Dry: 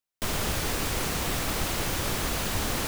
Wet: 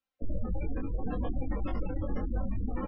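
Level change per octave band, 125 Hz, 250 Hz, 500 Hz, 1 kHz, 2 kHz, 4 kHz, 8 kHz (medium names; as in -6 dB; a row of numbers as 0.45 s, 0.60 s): -2.5 dB, -1.5 dB, -6.0 dB, -11.0 dB, -19.0 dB, -32.0 dB, under -40 dB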